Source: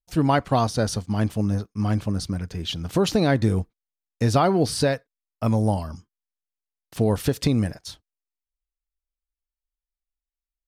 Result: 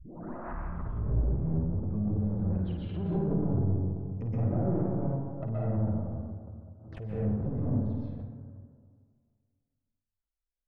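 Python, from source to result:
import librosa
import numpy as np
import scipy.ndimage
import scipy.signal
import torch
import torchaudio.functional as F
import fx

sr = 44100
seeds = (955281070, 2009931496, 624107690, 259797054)

p1 = fx.tape_start_head(x, sr, length_s=1.77)
p2 = fx.env_lowpass_down(p1, sr, base_hz=340.0, full_db=-20.0)
p3 = fx.high_shelf(p2, sr, hz=4900.0, db=-8.5)
p4 = fx.level_steps(p3, sr, step_db=14)
p5 = fx.phaser_stages(p4, sr, stages=6, low_hz=230.0, high_hz=2200.0, hz=3.1, feedback_pct=25)
p6 = 10.0 ** (-28.5 / 20.0) * np.tanh(p5 / 10.0 ** (-28.5 / 20.0))
p7 = fx.spacing_loss(p6, sr, db_at_10k=35)
p8 = fx.doubler(p7, sr, ms=43.0, db=-13)
p9 = p8 + fx.echo_multitap(p8, sr, ms=(53, 179), db=(-6.5, -19.0), dry=0)
p10 = fx.rev_plate(p9, sr, seeds[0], rt60_s=2.0, hf_ratio=0.3, predelay_ms=110, drr_db=-9.0)
p11 = fx.pre_swell(p10, sr, db_per_s=59.0)
y = F.gain(torch.from_numpy(p11), -4.0).numpy()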